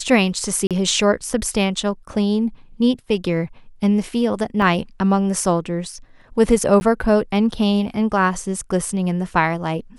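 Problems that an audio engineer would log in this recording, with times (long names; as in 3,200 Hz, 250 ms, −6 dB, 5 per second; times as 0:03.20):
0:00.67–0:00.71: drop-out 37 ms
0:04.62: drop-out 2.2 ms
0:06.80–0:06.81: drop-out 10 ms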